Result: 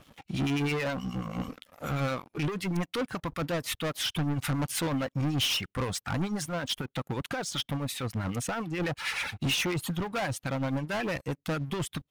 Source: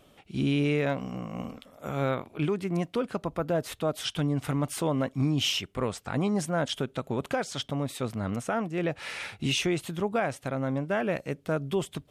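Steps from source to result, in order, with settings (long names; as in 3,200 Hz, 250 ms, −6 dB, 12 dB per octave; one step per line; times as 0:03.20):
reverb reduction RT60 0.68 s
dynamic equaliser 220 Hz, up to −7 dB, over −48 dBFS, Q 5.6
0:06.24–0:08.80: downward compressor 6 to 1, threshold −31 dBFS, peak gain reduction 7.5 dB
two-band tremolo in antiphase 9.3 Hz, depth 70%, crossover 1,300 Hz
gain into a clipping stage and back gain 23.5 dB
leveller curve on the samples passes 3
thirty-one-band graphic EQ 400 Hz −7 dB, 630 Hz −6 dB, 8,000 Hz −3 dB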